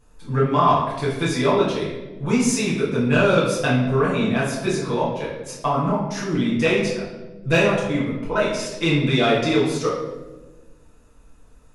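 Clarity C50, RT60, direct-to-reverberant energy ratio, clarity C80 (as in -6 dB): 2.5 dB, 1.2 s, -8.0 dB, 5.5 dB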